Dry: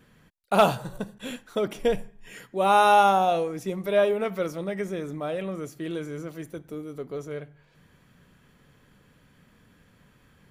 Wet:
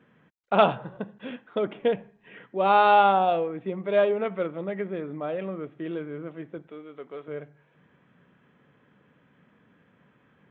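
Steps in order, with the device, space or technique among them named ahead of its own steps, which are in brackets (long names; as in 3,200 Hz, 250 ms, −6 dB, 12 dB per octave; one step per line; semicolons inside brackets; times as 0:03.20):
adaptive Wiener filter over 9 samples
0:06.67–0:07.28: spectral tilt +4 dB per octave
Bluetooth headset (high-pass filter 160 Hz 12 dB per octave; downsampling to 8,000 Hz; SBC 64 kbit/s 16,000 Hz)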